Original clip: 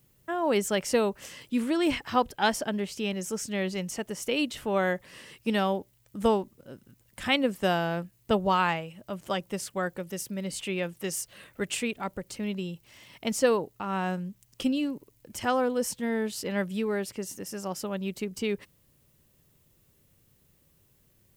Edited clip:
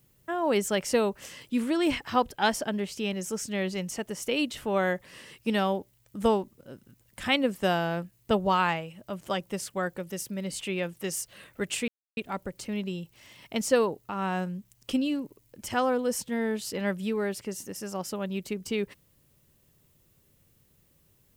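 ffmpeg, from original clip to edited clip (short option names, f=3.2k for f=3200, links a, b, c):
-filter_complex "[0:a]asplit=2[a][b];[a]atrim=end=11.88,asetpts=PTS-STARTPTS,afade=t=out:st=11.876:d=0.004:c=hsin,apad=pad_dur=0.29[c];[b]atrim=start=11.88,asetpts=PTS-STARTPTS,afade=t=in:d=0.004:c=hsin[d];[c][d]concat=n=2:v=0:a=1"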